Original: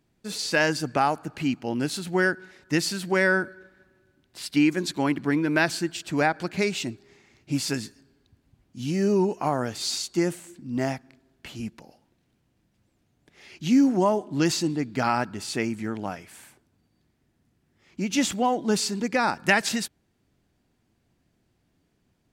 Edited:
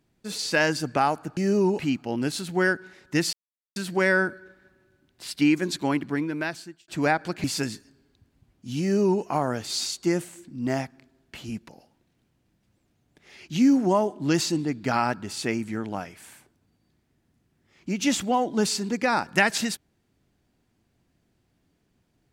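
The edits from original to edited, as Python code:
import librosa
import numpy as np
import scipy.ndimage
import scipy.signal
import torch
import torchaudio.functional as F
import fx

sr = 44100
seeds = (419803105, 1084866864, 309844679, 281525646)

y = fx.edit(x, sr, fx.insert_silence(at_s=2.91, length_s=0.43),
    fx.fade_out_span(start_s=5.0, length_s=1.03),
    fx.cut(start_s=6.59, length_s=0.96),
    fx.duplicate(start_s=8.92, length_s=0.42, to_s=1.37), tone=tone)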